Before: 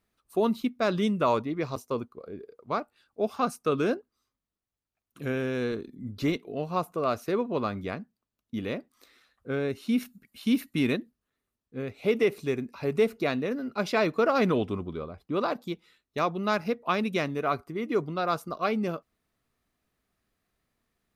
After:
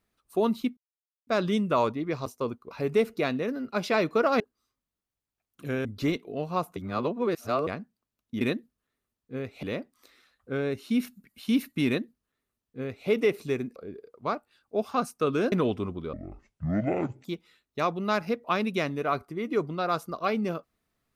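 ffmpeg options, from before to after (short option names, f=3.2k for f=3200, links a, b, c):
-filter_complex "[0:a]asplit=13[a][b][c][d][e][f][g][h][i][j][k][l][m];[a]atrim=end=0.77,asetpts=PTS-STARTPTS,afade=t=out:st=0.766:d=0.004:c=hsin,apad=pad_dur=0.5[n];[b]atrim=start=0.77:end=2.212,asetpts=PTS-STARTPTS,afade=t=in:d=0.004:c=hsin[o];[c]atrim=start=12.738:end=14.432[p];[d]atrim=start=3.968:end=5.422[q];[e]atrim=start=6.048:end=6.962[r];[f]atrim=start=6.958:end=7.872,asetpts=PTS-STARTPTS,areverse[s];[g]atrim=start=7.868:end=8.612[t];[h]atrim=start=10.838:end=12.062[u];[i]atrim=start=8.608:end=12.742[v];[j]atrim=start=2.208:end=3.972[w];[k]atrim=start=14.428:end=15.044[x];[l]atrim=start=15.04:end=15.63,asetpts=PTS-STARTPTS,asetrate=23373,aresample=44100,atrim=end_sample=49092,asetpts=PTS-STARTPTS[y];[m]atrim=start=15.626[z];[n][o]concat=n=2:v=0:a=1[aa];[aa][p]acrossfade=d=0.004:c1=hsin:c2=hsin[ab];[ab][q]acrossfade=d=0.004:c1=hsin:c2=hsin[ac];[ac][r]acrossfade=d=0.004:c1=hsin:c2=hsin[ad];[ad][s]acrossfade=d=0.004:c1=hsin:c2=hsin[ae];[ae][t]acrossfade=d=0.004:c1=hsin:c2=hsin[af];[af][u]acrossfade=d=0.004:c1=hsin:c2=hsin[ag];[ag][v]acrossfade=d=0.004:c1=hsin:c2=hsin[ah];[ah][w]acrossfade=d=0.004:c1=hsin:c2=hsin[ai];[ai][x]acrossfade=d=0.004:c1=hsin:c2=hsin[aj];[aj][y]acrossfade=d=0.004:c1=hsin:c2=hsin[ak];[ak][z]acrossfade=d=0.004:c1=hsin:c2=hsin"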